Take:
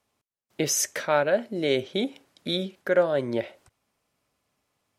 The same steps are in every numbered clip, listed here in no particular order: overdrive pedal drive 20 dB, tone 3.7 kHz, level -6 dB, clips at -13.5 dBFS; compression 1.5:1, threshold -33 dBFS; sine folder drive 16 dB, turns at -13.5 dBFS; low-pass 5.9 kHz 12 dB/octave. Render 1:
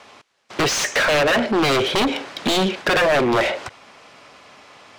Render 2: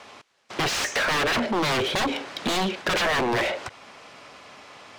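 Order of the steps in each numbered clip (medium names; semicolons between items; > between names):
compression > sine folder > low-pass > overdrive pedal; sine folder > low-pass > overdrive pedal > compression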